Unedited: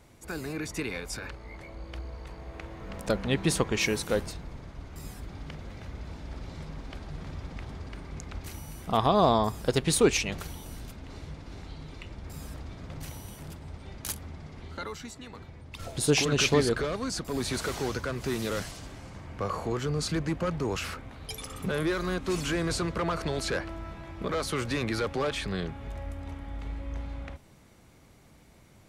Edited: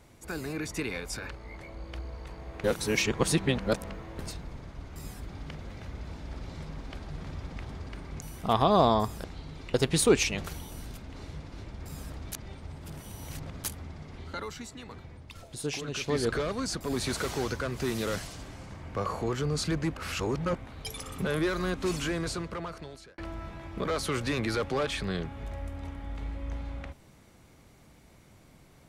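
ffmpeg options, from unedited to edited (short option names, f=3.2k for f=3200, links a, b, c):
-filter_complex "[0:a]asplit=14[a][b][c][d][e][f][g][h][i][j][k][l][m][n];[a]atrim=end=2.642[o];[b]atrim=start=2.638:end=4.192,asetpts=PTS-STARTPTS,areverse[p];[c]atrim=start=4.188:end=8.222[q];[d]atrim=start=8.658:end=9.682[r];[e]atrim=start=11.568:end=12.072[s];[f]atrim=start=9.678:end=11.572[t];[g]atrim=start=12.068:end=12.762[u];[h]atrim=start=12.758:end=14.082,asetpts=PTS-STARTPTS,areverse[v];[i]atrim=start=14.078:end=15.88,asetpts=PTS-STARTPTS,afade=t=out:st=1.512:d=0.29:silence=0.316228[w];[j]atrim=start=15.88:end=16.49,asetpts=PTS-STARTPTS,volume=-10dB[x];[k]atrim=start=16.49:end=20.412,asetpts=PTS-STARTPTS,afade=t=in:d=0.29:silence=0.316228[y];[l]atrim=start=20.408:end=20.992,asetpts=PTS-STARTPTS,areverse[z];[m]atrim=start=20.988:end=23.62,asetpts=PTS-STARTPTS,afade=t=out:st=1.272:d=1.36[aa];[n]atrim=start=23.62,asetpts=PTS-STARTPTS,afade=t=in:d=0.004:c=hsin[ab];[o][p]acrossfade=d=0.004:c1=hsin:c2=hsin[ac];[ac][q]acrossfade=d=0.004:c1=hsin:c2=hsin[ad];[ad][r]acrossfade=d=0.004:c1=hsin:c2=hsin[ae];[ae][s]acrossfade=d=0.004:c1=hsin:c2=hsin[af];[af][t]acrossfade=d=0.004:c1=hsin:c2=hsin[ag];[ag][u]acrossfade=d=0.004:c1=hsin:c2=hsin[ah];[ah][v]acrossfade=d=0.004:c1=hsin:c2=hsin[ai];[w][x][y]concat=n=3:v=0:a=1[aj];[ai][aj]acrossfade=d=0.004:c1=hsin:c2=hsin[ak];[ak][z]acrossfade=d=0.004:c1=hsin:c2=hsin[al];[aa][ab]concat=n=2:v=0:a=1[am];[al][am]acrossfade=d=0.004:c1=hsin:c2=hsin"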